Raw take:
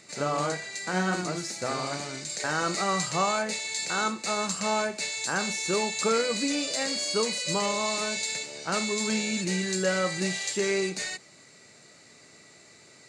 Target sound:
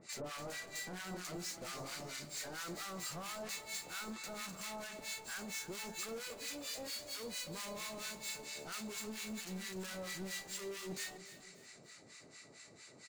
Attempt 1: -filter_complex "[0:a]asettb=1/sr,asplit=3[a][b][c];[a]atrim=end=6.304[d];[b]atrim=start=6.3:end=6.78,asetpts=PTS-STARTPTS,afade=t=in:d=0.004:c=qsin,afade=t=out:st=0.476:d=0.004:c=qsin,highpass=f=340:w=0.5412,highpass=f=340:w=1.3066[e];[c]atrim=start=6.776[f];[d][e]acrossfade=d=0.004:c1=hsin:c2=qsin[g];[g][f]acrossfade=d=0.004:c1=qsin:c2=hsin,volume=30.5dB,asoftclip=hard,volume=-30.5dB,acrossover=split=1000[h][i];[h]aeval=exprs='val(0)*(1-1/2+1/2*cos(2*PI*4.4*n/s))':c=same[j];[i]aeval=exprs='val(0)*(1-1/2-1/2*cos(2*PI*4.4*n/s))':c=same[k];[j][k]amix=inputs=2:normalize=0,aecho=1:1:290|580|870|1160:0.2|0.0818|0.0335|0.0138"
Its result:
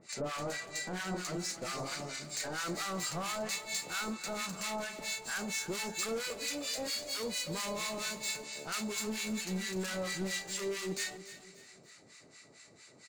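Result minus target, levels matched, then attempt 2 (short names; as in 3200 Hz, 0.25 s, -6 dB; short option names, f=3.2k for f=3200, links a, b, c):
overloaded stage: distortion -4 dB
-filter_complex "[0:a]asettb=1/sr,asplit=3[a][b][c];[a]atrim=end=6.304[d];[b]atrim=start=6.3:end=6.78,asetpts=PTS-STARTPTS,afade=t=in:d=0.004:c=qsin,afade=t=out:st=0.476:d=0.004:c=qsin,highpass=f=340:w=0.5412,highpass=f=340:w=1.3066[e];[c]atrim=start=6.776[f];[d][e]acrossfade=d=0.004:c1=hsin:c2=qsin[g];[g][f]acrossfade=d=0.004:c1=qsin:c2=hsin,volume=39.5dB,asoftclip=hard,volume=-39.5dB,acrossover=split=1000[h][i];[h]aeval=exprs='val(0)*(1-1/2+1/2*cos(2*PI*4.4*n/s))':c=same[j];[i]aeval=exprs='val(0)*(1-1/2-1/2*cos(2*PI*4.4*n/s))':c=same[k];[j][k]amix=inputs=2:normalize=0,aecho=1:1:290|580|870|1160:0.2|0.0818|0.0335|0.0138"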